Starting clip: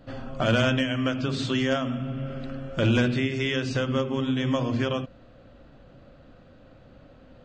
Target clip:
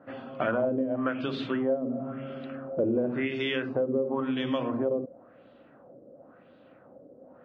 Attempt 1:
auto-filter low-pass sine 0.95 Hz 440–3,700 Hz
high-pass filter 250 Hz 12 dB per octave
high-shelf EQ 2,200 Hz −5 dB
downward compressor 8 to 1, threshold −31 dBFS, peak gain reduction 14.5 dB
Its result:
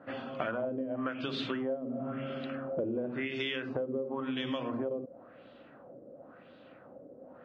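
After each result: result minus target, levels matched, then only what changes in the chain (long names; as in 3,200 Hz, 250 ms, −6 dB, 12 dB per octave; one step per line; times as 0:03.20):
downward compressor: peak gain reduction +8 dB; 4,000 Hz band +5.0 dB
change: downward compressor 8 to 1, threshold −22.5 dBFS, peak gain reduction 7 dB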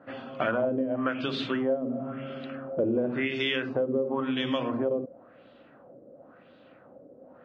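4,000 Hz band +4.5 dB
change: high-shelf EQ 2,200 Hz −13 dB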